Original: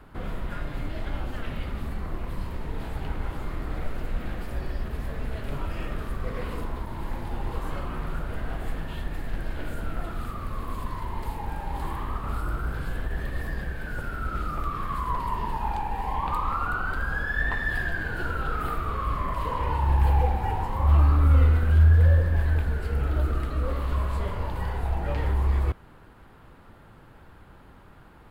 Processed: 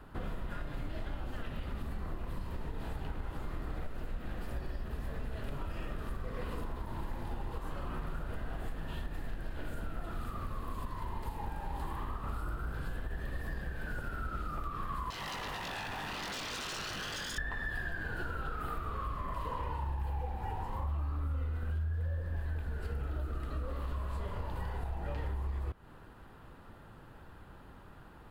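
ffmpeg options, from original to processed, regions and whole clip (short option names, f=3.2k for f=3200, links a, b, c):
-filter_complex "[0:a]asettb=1/sr,asplit=3[a][b][c];[a]atrim=end=15.104[d];[b]atrim=start=15.1:end=17.38,asetpts=PTS-STARTPTS,afade=t=in:d=0.004:c=qsin,afade=t=out:st=2.276:d=0.004:c=qsin,aeval=exprs='0.0224*(abs(mod(val(0)/0.0224+3,4)-2)-1)':c=same,asplit=2[e][f];[f]adelay=20,volume=-6dB[g];[e][g]amix=inputs=2:normalize=0,atrim=end_sample=100548[h];[c]atrim=start=17.376[i];[d][h]acrossfade=d=0.004:c1=hsin:c2=qsin[j];[j][i]acrossfade=d=0.004:c1=qsin:c2=hsin,bandreject=f=2.2k:w=13,acompressor=threshold=-31dB:ratio=6,volume=-2.5dB"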